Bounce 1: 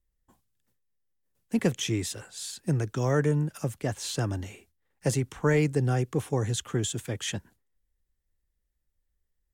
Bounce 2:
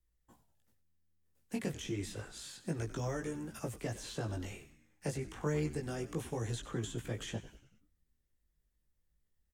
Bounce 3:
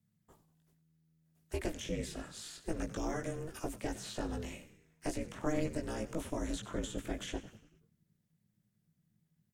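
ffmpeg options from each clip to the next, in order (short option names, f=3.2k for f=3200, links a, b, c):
-filter_complex "[0:a]acrossover=split=250|970|2700[a][b][c][d];[a]acompressor=threshold=-40dB:ratio=4[e];[b]acompressor=threshold=-39dB:ratio=4[f];[c]acompressor=threshold=-51dB:ratio=4[g];[d]acompressor=threshold=-49dB:ratio=4[h];[e][f][g][h]amix=inputs=4:normalize=0,flanger=delay=17:depth=3.4:speed=0.29,asplit=6[i][j][k][l][m][n];[j]adelay=95,afreqshift=-81,volume=-14dB[o];[k]adelay=190,afreqshift=-162,volume=-19.8dB[p];[l]adelay=285,afreqshift=-243,volume=-25.7dB[q];[m]adelay=380,afreqshift=-324,volume=-31.5dB[r];[n]adelay=475,afreqshift=-405,volume=-37.4dB[s];[i][o][p][q][r][s]amix=inputs=6:normalize=0,volume=2dB"
-af "aeval=exprs='val(0)*sin(2*PI*160*n/s)':c=same,volume=3.5dB"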